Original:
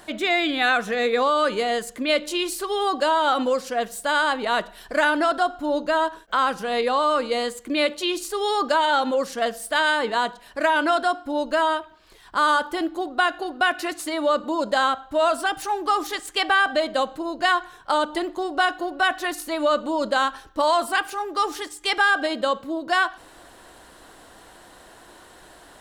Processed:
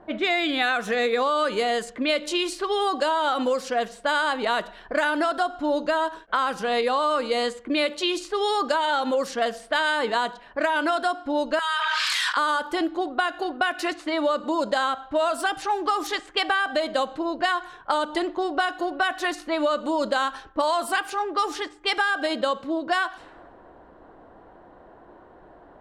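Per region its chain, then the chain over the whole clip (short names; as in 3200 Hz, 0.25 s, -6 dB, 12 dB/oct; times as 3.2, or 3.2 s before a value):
11.59–12.37 HPF 1300 Hz 24 dB/oct + fast leveller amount 100%
whole clip: low-pass opened by the level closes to 730 Hz, open at -19.5 dBFS; low shelf 170 Hz -4 dB; compressor, threshold -22 dBFS; gain +2.5 dB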